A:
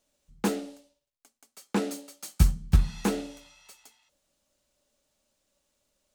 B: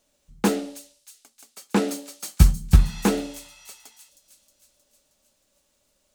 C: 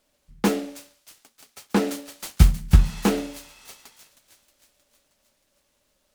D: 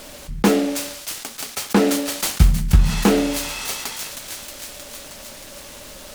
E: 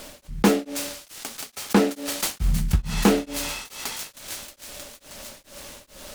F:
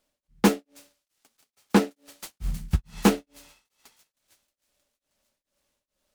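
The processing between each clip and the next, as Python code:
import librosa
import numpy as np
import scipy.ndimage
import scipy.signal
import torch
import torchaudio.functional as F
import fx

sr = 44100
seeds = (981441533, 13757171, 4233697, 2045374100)

y1 = fx.echo_wet_highpass(x, sr, ms=314, feedback_pct=60, hz=5500.0, wet_db=-9.0)
y1 = y1 * librosa.db_to_amplitude(6.0)
y2 = fx.noise_mod_delay(y1, sr, seeds[0], noise_hz=1900.0, depth_ms=0.038)
y3 = fx.env_flatten(y2, sr, amount_pct=50)
y4 = y3 * np.abs(np.cos(np.pi * 2.3 * np.arange(len(y3)) / sr))
y4 = y4 * librosa.db_to_amplitude(-1.5)
y5 = fx.upward_expand(y4, sr, threshold_db=-37.0, expansion=2.5)
y5 = y5 * librosa.db_to_amplitude(1.0)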